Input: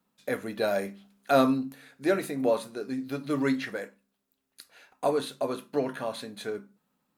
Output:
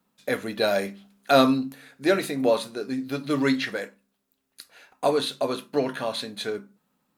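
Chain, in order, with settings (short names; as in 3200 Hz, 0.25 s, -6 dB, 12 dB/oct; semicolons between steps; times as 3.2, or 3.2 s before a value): dynamic EQ 3800 Hz, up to +7 dB, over -51 dBFS, Q 0.93; gain +3.5 dB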